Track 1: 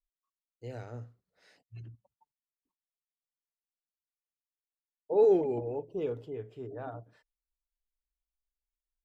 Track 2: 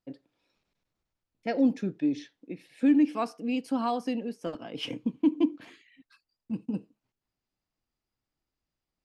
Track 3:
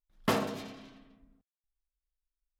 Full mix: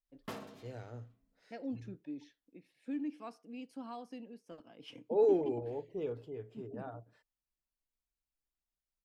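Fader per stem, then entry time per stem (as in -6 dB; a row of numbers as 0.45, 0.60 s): -4.5, -16.5, -15.5 dB; 0.00, 0.05, 0.00 s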